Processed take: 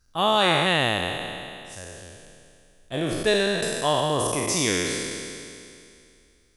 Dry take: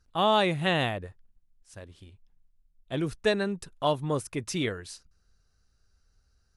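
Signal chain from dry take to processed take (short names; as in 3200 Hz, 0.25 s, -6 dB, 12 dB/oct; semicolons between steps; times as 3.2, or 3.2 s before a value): spectral trails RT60 2.47 s; high shelf 4700 Hz +8.5 dB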